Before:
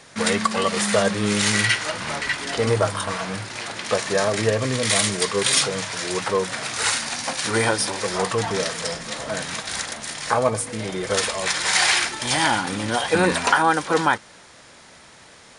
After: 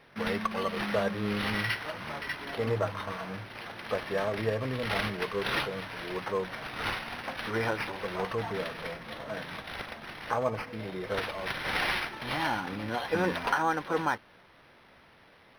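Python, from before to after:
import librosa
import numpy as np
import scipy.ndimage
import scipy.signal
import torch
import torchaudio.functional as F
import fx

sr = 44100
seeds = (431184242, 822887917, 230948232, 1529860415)

y = np.interp(np.arange(len(x)), np.arange(len(x))[::6], x[::6])
y = y * librosa.db_to_amplitude(-9.0)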